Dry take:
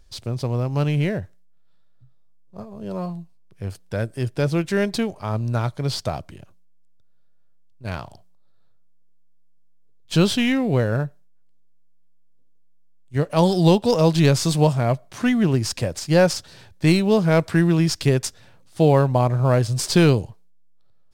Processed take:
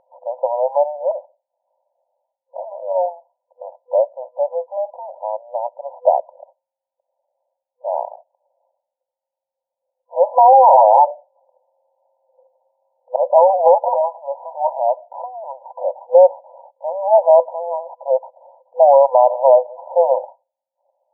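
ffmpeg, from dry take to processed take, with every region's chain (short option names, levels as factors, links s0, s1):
-filter_complex "[0:a]asettb=1/sr,asplit=3[s0][s1][s2];[s0]atrim=end=1.114[s3];[s1]atrim=start=1.11:end=2.65,asetpts=PTS-STARTPTS,afade=t=in:d=0.004:c=qsin,afade=t=out:st=1.536:d=0.004:c=qsin,acompressor=threshold=0.0282:ratio=6:attack=3.2:release=140:knee=1:detection=peak,aeval=exprs='(mod(15*val(0)+1,2)-1)/15':c=same[s4];[s2]atrim=start=2.646[s5];[s3][s4]acrossfade=d=0.004:c1=hsin:c2=qsin[s6];[s6][s5]acrossfade=d=0.004:c1=qsin:c2=hsin,asettb=1/sr,asplit=3[s7][s8][s9];[s7]atrim=end=4.354[s10];[s8]atrim=start=4.35:end=6.02,asetpts=PTS-STARTPTS,afade=t=in:d=0.004:c=qsin,afade=t=out:st=1.666:d=0.004:c=qsin,equalizer=f=930:w=0.56:g=-6,aeval=exprs='(tanh(10*val(0)+0.45)-tanh(0.45))/10':c=same[s11];[s9]atrim=start=6.016[s12];[s10][s11]acrossfade=d=0.004:c1=hsin:c2=qsin[s13];[s13][s12]acrossfade=d=0.004:c1=qsin:c2=hsin,asettb=1/sr,asplit=3[s14][s15][s16];[s14]atrim=end=10.384[s17];[s15]atrim=start=10.38:end=13.16,asetpts=PTS-STARTPTS,afade=t=in:d=0.004:c=qsin,afade=t=out:st=2.776:d=0.004:c=qsin,equalizer=f=2100:t=o:w=0.31:g=4,aeval=exprs='0.376*sin(PI/2*6.31*val(0)/0.376)':c=same[s18];[s16]atrim=start=13.156[s19];[s17][s18]acrossfade=d=0.004:c1=hsin:c2=qsin[s20];[s20][s19]acrossfade=d=0.004:c1=qsin:c2=hsin,asettb=1/sr,asplit=3[s21][s22][s23];[s21]atrim=end=13.884[s24];[s22]atrim=start=13.88:end=16.15,asetpts=PTS-STARTPTS,afade=t=in:d=0.004:c=qsin,afade=t=out:st=2.266:d=0.004:c=qsin,aecho=1:1:1.1:0.41,atrim=end_sample=100107,acompressor=threshold=0.0794:ratio=10:attack=3.2:release=140:knee=1:detection=peak[s25];[s23]atrim=start=16.146[s26];[s24][s25]acrossfade=d=0.004:c1=hsin:c2=qsin[s27];[s27][s26]acrossfade=d=0.004:c1=qsin:c2=hsin,afftfilt=real='re*between(b*sr/4096,500,1000)':imag='im*between(b*sr/4096,500,1000)':win_size=4096:overlap=0.75,alimiter=level_in=6.68:limit=0.891:release=50:level=0:latency=1,volume=0.891"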